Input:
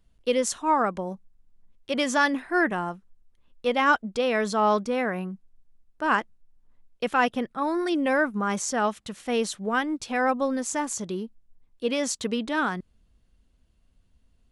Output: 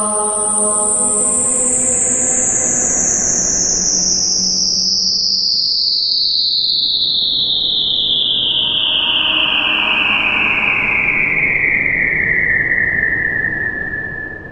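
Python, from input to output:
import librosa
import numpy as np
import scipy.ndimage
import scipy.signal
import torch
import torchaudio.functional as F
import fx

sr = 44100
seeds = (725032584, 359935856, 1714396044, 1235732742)

p1 = fx.dmg_wind(x, sr, seeds[0], corner_hz=390.0, level_db=-29.0)
p2 = fx.spec_paint(p1, sr, seeds[1], shape='fall', start_s=4.69, length_s=1.92, low_hz=1700.0, high_hz=9700.0, level_db=-15.0)
p3 = fx.rider(p2, sr, range_db=4, speed_s=0.5)
p4 = p2 + F.gain(torch.from_numpy(p3), 0.0).numpy()
p5 = fx.paulstretch(p4, sr, seeds[2], factor=6.9, window_s=0.5, from_s=4.66)
y = F.gain(torch.from_numpy(p5), -4.5).numpy()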